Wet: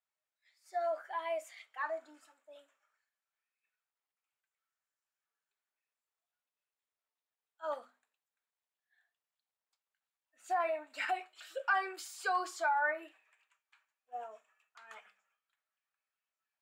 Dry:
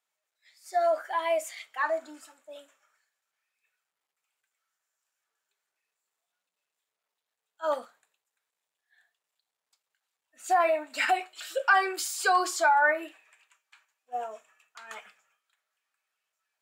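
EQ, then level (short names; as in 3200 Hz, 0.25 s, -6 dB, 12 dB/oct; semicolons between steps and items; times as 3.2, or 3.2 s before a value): low shelf 400 Hz -8.5 dB; high shelf 3600 Hz -9.5 dB; notches 50/100/150/200/250 Hz; -7.0 dB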